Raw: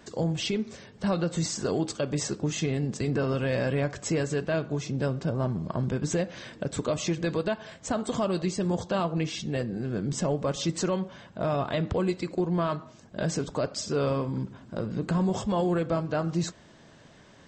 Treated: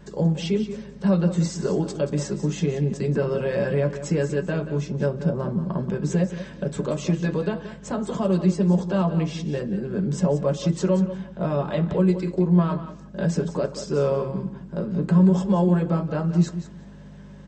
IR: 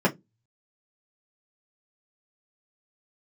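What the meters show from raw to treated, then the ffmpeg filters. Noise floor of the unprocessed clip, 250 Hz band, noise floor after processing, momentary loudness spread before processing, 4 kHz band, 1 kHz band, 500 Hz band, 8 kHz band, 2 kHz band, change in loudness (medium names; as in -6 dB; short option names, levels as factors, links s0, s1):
-54 dBFS, +7.0 dB, -42 dBFS, 6 LU, -3.0 dB, +0.5 dB, +4.0 dB, -3.5 dB, 0.0 dB, +5.5 dB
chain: -filter_complex "[0:a]aeval=exprs='val(0)+0.00631*(sin(2*PI*50*n/s)+sin(2*PI*2*50*n/s)/2+sin(2*PI*3*50*n/s)/3+sin(2*PI*4*50*n/s)/4+sin(2*PI*5*50*n/s)/5)':c=same,aecho=1:1:180|360:0.251|0.0402,asplit=2[s0][s1];[1:a]atrim=start_sample=2205[s2];[s1][s2]afir=irnorm=-1:irlink=0,volume=0.2[s3];[s0][s3]amix=inputs=2:normalize=0,volume=0.596"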